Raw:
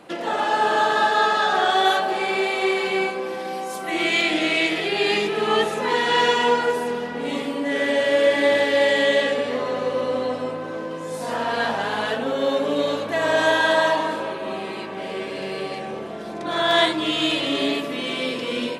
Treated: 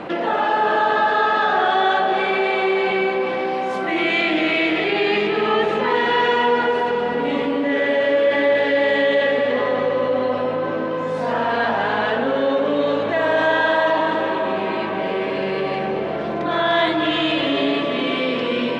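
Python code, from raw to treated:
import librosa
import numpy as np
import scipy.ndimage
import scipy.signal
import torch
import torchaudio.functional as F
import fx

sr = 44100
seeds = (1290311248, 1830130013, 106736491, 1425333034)

y = scipy.signal.sosfilt(scipy.signal.butter(2, 2700.0, 'lowpass', fs=sr, output='sos'), x)
y = fx.echo_heads(y, sr, ms=124, heads='second and third', feedback_pct=49, wet_db=-12.5)
y = fx.env_flatten(y, sr, amount_pct=50)
y = y * librosa.db_to_amplitude(-1.5)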